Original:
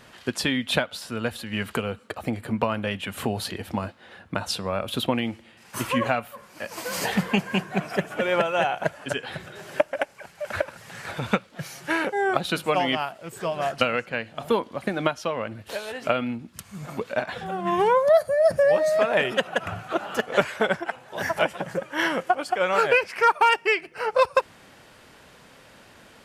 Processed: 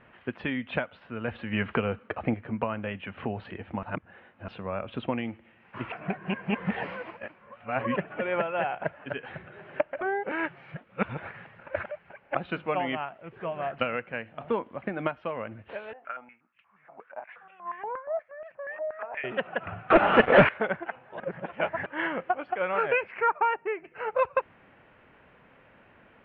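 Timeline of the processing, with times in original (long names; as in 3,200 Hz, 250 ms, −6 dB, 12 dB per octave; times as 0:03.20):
0:01.28–0:02.34: clip gain +6 dB
0:03.83–0:04.48: reverse
0:05.92–0:07.96: reverse
0:10.01–0:12.35: reverse
0:15.93–0:19.24: band-pass on a step sequencer 8.4 Hz 720–2,600 Hz
0:19.90–0:20.49: leveller curve on the samples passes 5
0:21.20–0:21.86: reverse
0:23.20–0:23.83: low-pass filter 2,400 Hz → 1,100 Hz
whole clip: Butterworth low-pass 2,700 Hz 36 dB per octave; level −5.5 dB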